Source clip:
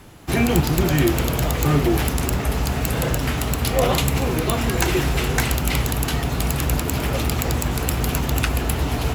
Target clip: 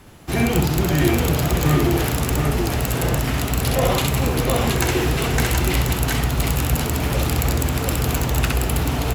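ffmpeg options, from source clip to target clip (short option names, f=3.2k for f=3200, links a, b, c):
-af "aecho=1:1:65|725:0.708|0.668,volume=-2dB"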